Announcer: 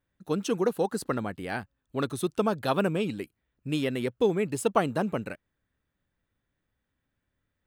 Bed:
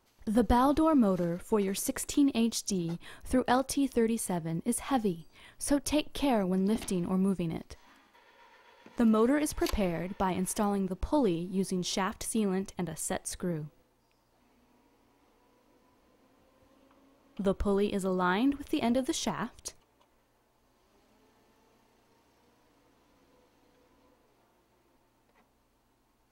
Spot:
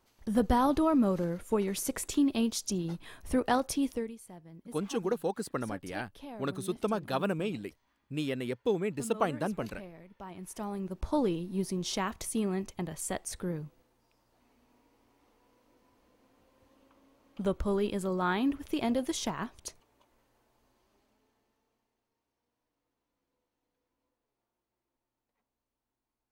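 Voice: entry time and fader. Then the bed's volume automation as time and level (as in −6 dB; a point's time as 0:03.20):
4.45 s, −5.0 dB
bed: 0:03.89 −1 dB
0:04.17 −17 dB
0:10.16 −17 dB
0:11.04 −1.5 dB
0:20.62 −1.5 dB
0:22.13 −19 dB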